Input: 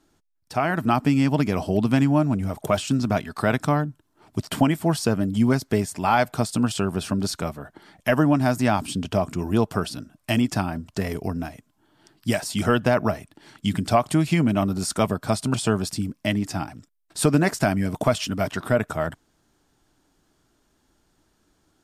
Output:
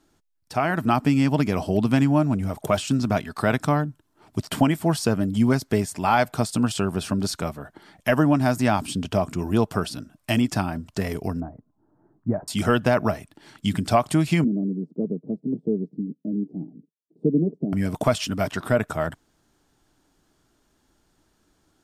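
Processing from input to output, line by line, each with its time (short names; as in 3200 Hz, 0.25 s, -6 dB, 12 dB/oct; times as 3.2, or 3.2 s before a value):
11.4–12.48 Gaussian blur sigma 8.5 samples
14.44–17.73 elliptic band-pass 160–450 Hz, stop band 60 dB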